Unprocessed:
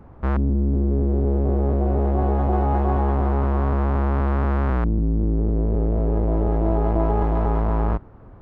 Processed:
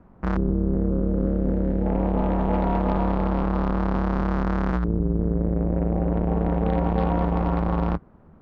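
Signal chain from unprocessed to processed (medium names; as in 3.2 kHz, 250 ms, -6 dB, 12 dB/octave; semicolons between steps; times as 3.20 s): 0.88–1.86 s: high-order bell 880 Hz -9 dB; Chebyshev shaper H 5 -23 dB, 7 -20 dB, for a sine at -9 dBFS; ring modulator 120 Hz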